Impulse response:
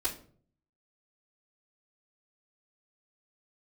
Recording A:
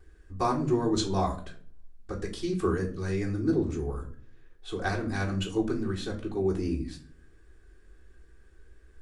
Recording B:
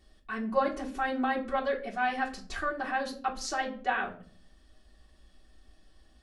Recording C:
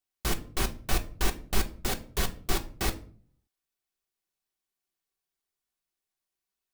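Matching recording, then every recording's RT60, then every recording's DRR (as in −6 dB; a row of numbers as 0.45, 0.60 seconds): A; 0.50, 0.50, 0.50 seconds; −13.0, −4.0, 4.0 decibels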